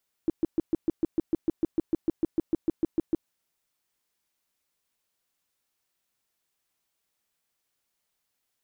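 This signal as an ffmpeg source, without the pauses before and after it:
-f lavfi -i "aevalsrc='0.112*sin(2*PI*326*mod(t,0.15))*lt(mod(t,0.15),6/326)':d=3:s=44100"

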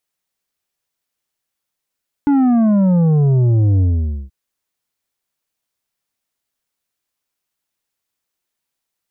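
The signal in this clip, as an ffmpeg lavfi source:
-f lavfi -i "aevalsrc='0.282*clip((2.03-t)/0.5,0,1)*tanh(2.37*sin(2*PI*290*2.03/log(65/290)*(exp(log(65/290)*t/2.03)-1)))/tanh(2.37)':d=2.03:s=44100"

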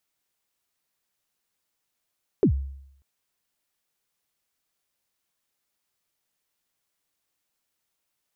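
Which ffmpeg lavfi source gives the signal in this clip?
-f lavfi -i "aevalsrc='0.224*pow(10,-3*t/0.74)*sin(2*PI*(460*0.089/log(68/460)*(exp(log(68/460)*min(t,0.089)/0.089)-1)+68*max(t-0.089,0)))':d=0.59:s=44100"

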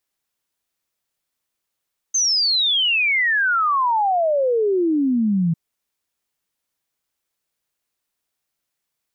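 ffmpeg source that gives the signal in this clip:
-f lavfi -i "aevalsrc='0.168*clip(min(t,3.4-t)/0.01,0,1)*sin(2*PI*6400*3.4/log(160/6400)*(exp(log(160/6400)*t/3.4)-1))':d=3.4:s=44100"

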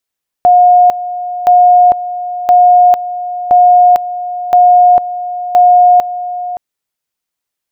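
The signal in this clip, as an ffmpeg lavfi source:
-f lavfi -i "aevalsrc='pow(10,(-2.5-14*gte(mod(t,1.02),0.45))/20)*sin(2*PI*717*t)':d=6.12:s=44100"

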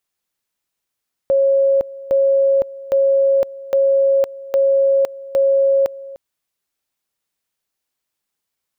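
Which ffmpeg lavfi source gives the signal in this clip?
-f lavfi -i "aevalsrc='pow(10,(-11-19*gte(mod(t,0.81),0.51))/20)*sin(2*PI*547*t)':d=4.86:s=44100"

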